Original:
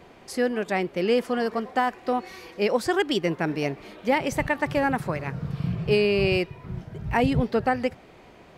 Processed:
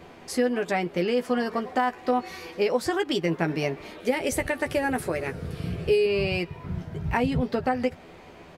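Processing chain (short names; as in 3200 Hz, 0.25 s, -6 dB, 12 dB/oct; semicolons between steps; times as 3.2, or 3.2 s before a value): 4–6.06 fifteen-band EQ 160 Hz -11 dB, 400 Hz +5 dB, 1000 Hz -8 dB, 10000 Hz +10 dB; compressor 6:1, threshold -24 dBFS, peak gain reduction 9.5 dB; doubler 12 ms -6 dB; gain +2 dB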